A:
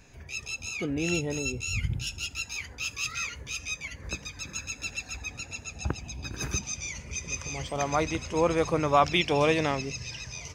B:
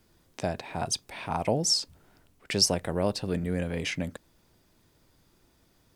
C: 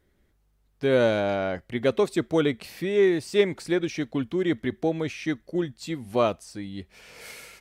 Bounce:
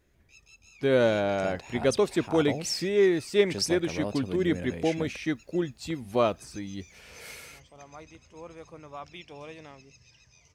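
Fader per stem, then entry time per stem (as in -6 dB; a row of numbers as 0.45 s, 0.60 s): -20.0 dB, -6.5 dB, -1.5 dB; 0.00 s, 1.00 s, 0.00 s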